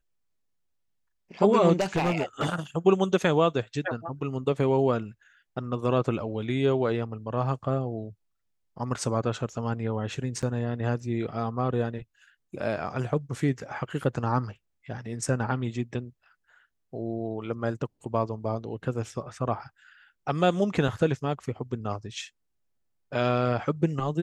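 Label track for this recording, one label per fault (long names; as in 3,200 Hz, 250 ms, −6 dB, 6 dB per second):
1.800000	2.590000	clipping −21 dBFS
10.420000	10.430000	drop-out 7.1 ms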